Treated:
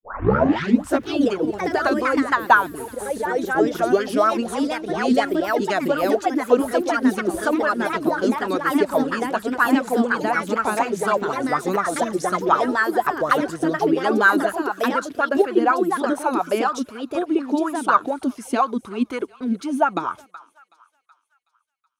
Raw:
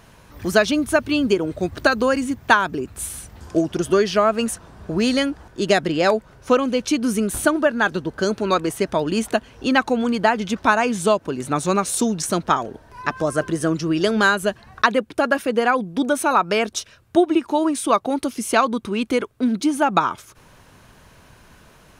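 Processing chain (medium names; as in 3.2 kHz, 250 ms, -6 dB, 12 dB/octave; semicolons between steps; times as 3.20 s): tape start-up on the opening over 1.06 s; gate -36 dBFS, range -53 dB; thinning echo 374 ms, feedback 54%, high-pass 990 Hz, level -20 dB; ever faster or slower copies 94 ms, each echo +2 st, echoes 3; sweeping bell 4.1 Hz 250–1500 Hz +16 dB; trim -10 dB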